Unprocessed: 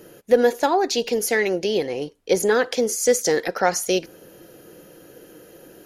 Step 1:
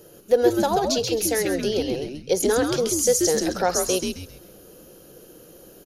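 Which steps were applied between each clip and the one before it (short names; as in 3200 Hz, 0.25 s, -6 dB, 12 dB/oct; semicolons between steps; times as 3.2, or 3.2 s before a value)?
graphic EQ 250/1000/2000 Hz -10/-3/-10 dB; on a send: frequency-shifting echo 0.133 s, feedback 30%, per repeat -140 Hz, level -4 dB; on the sum: gain +1 dB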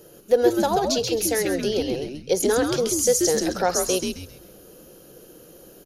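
notches 50/100 Hz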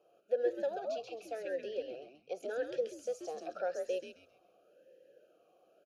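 vowel sweep a-e 0.9 Hz; gain -5.5 dB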